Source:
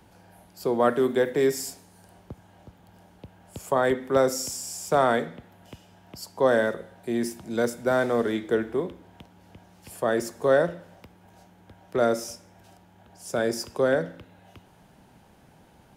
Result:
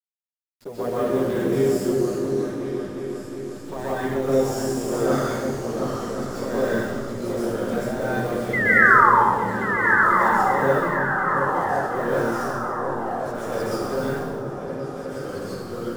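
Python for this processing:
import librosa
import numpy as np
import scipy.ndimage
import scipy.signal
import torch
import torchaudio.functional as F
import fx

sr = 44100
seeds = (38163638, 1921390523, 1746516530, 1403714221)

y = fx.delta_hold(x, sr, step_db=-34.0)
y = fx.peak_eq(y, sr, hz=170.0, db=6.5, octaves=2.3)
y = fx.comb_fb(y, sr, f0_hz=200.0, decay_s=1.6, harmonics='all', damping=0.0, mix_pct=70)
y = fx.env_flanger(y, sr, rest_ms=9.8, full_db=-22.0)
y = fx.spec_paint(y, sr, seeds[0], shape='fall', start_s=8.53, length_s=0.57, low_hz=820.0, high_hz=2100.0, level_db=-23.0)
y = fx.echo_pitch(y, sr, ms=100, semitones=-2, count=3, db_per_echo=-6.0)
y = fx.echo_opening(y, sr, ms=360, hz=200, octaves=2, feedback_pct=70, wet_db=-3)
y = fx.rev_plate(y, sr, seeds[1], rt60_s=1.1, hf_ratio=0.95, predelay_ms=115, drr_db=-9.0)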